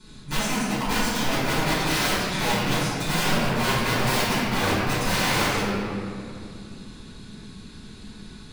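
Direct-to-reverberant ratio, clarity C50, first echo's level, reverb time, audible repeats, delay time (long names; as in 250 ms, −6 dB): −11.0 dB, −3.0 dB, no echo audible, 2.5 s, no echo audible, no echo audible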